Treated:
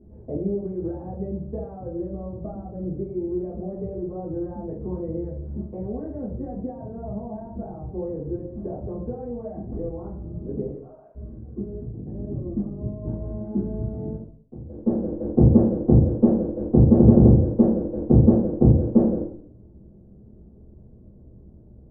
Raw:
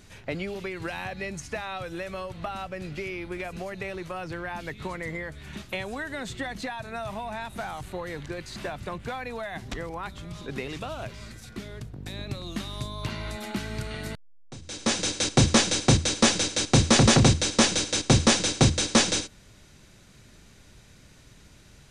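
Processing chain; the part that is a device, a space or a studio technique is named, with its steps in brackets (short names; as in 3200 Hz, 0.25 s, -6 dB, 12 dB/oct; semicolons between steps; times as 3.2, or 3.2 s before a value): 10.7–11.15 HPF 1300 Hz 12 dB/oct; next room (LPF 540 Hz 24 dB/oct; reverb RT60 0.60 s, pre-delay 4 ms, DRR -10 dB); gain -4.5 dB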